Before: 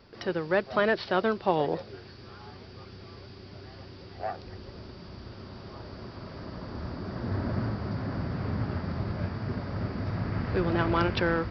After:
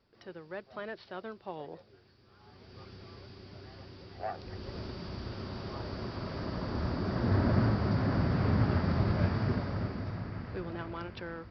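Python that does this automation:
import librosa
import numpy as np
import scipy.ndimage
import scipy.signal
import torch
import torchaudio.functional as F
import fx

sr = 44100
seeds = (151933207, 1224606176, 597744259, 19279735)

y = fx.gain(x, sr, db=fx.line((2.27, -16.0), (2.8, -3.5), (4.28, -3.5), (4.77, 3.5), (9.41, 3.5), (10.31, -8.5), (11.0, -15.0)))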